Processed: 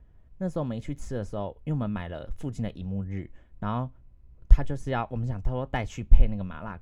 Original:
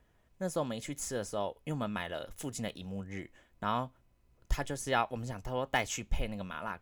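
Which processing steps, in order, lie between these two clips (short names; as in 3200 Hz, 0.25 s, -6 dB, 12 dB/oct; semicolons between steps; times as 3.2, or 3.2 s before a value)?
RIAA curve playback; gain -1 dB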